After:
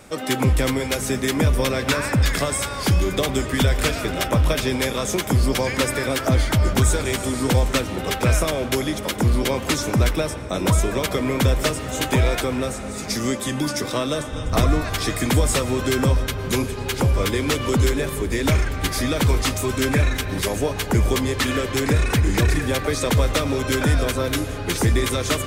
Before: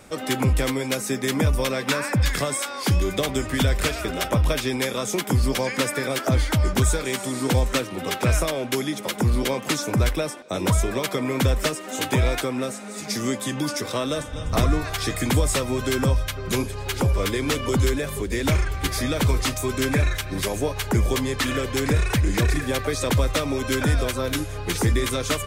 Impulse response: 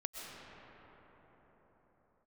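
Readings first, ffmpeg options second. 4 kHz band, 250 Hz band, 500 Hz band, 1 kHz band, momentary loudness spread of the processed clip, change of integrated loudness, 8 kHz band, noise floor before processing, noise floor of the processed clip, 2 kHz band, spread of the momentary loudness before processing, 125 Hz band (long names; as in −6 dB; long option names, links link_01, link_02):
+2.0 dB, +2.5 dB, +2.5 dB, +2.5 dB, 5 LU, +2.5 dB, +2.0 dB, −34 dBFS, −30 dBFS, +2.5 dB, 5 LU, +2.5 dB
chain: -filter_complex "[0:a]asplit=2[link_01][link_02];[1:a]atrim=start_sample=2205,asetrate=48510,aresample=44100[link_03];[link_02][link_03]afir=irnorm=-1:irlink=0,volume=-7dB[link_04];[link_01][link_04]amix=inputs=2:normalize=0"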